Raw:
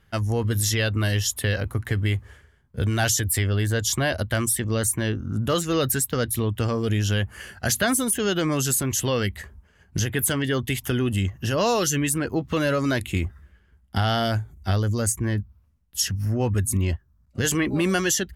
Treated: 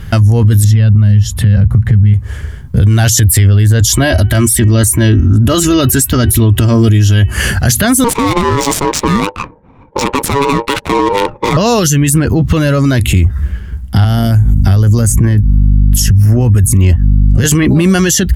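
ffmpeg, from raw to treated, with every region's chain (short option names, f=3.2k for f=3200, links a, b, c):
-filter_complex "[0:a]asettb=1/sr,asplit=3[a][b][c];[a]atrim=end=0.644[d];[b]atrim=start=0.64:end=2.14,asetpts=PTS-STARTPTS,afade=t=in:d=0.004:c=qsin,afade=t=out:st=1.496:d=0.004:c=qsin,lowpass=f=1.8k:p=1,lowshelf=f=240:t=q:w=3:g=6.5[e];[c]atrim=start=2.136[f];[d][e]acrossfade=d=0.004:c1=hsin:c2=qsin[g];[g][f]acrossfade=d=0.004:c1=qsin:c2=hsin,asettb=1/sr,asplit=3[h][i][j];[h]atrim=end=3.804[k];[i]atrim=start=3.8:end=7.34,asetpts=PTS-STARTPTS,afade=t=in:d=0.004:c=qsin,afade=t=out:st=3.536:d=0.004:c=qsin,aecho=1:1:3.1:0.68,atrim=end_sample=156114,bandreject=f=374.6:t=h:w=4,bandreject=f=749.2:t=h:w=4,bandreject=f=1.1238k:t=h:w=4,bandreject=f=1.4984k:t=h:w=4,bandreject=f=1.873k:t=h:w=4,bandreject=f=2.2476k:t=h:w=4,bandreject=f=2.6222k:t=h:w=4,bandreject=f=2.9968k:t=h:w=4[l];[j]atrim=start=7.336[m];[k][l]acrossfade=d=0.004:c1=hsin:c2=qsin[n];[n][m]acrossfade=d=0.004:c1=qsin:c2=hsin,asettb=1/sr,asplit=3[o][p][q];[o]atrim=end=8.044[r];[p]atrim=start=8.04:end=11.57,asetpts=PTS-STARTPTS,afade=t=in:d=0.004:c=qsin,afade=t=out:st=3.526:d=0.004:c=qsin,highpass=f=190:w=0.5412,highpass=f=190:w=1.3066,aeval=exprs='val(0)*sin(2*PI*700*n/s)':c=same,adynamicsmooth=sensitivity=4:basefreq=840[s];[q]atrim=start=11.566[t];[r][s]acrossfade=d=0.004:c1=hsin:c2=qsin[u];[u][t]acrossfade=d=0.004:c1=qsin:c2=hsin,asettb=1/sr,asplit=3[v][w][x];[v]atrim=end=14.044[y];[w]atrim=start=14.04:end=17.44,asetpts=PTS-STARTPTS,afade=t=in:d=0.004:c=qsin,afade=t=out:st=3.396:d=0.004:c=qsin,aeval=exprs='val(0)+0.0126*(sin(2*PI*50*n/s)+sin(2*PI*2*50*n/s)/2+sin(2*PI*3*50*n/s)/3+sin(2*PI*4*50*n/s)/4+sin(2*PI*5*50*n/s)/5)':c=same,acrossover=split=370|8000[z][aa][ab];[z]acompressor=threshold=-31dB:ratio=4[ac];[aa]acompressor=threshold=-36dB:ratio=4[ad];[ab]acompressor=threshold=-37dB:ratio=4[ae];[ac][ad][ae]amix=inputs=3:normalize=0,equalizer=f=4k:w=2.5:g=-5[af];[x]atrim=start=17.436[ag];[y][af]acrossfade=d=0.004:c1=hsin:c2=qsin[ah];[ah][ag]acrossfade=d=0.004:c1=qsin:c2=hsin,bass=f=250:g=11,treble=f=4k:g=3,acompressor=threshold=-24dB:ratio=6,alimiter=level_in=26.5dB:limit=-1dB:release=50:level=0:latency=1,volume=-1dB"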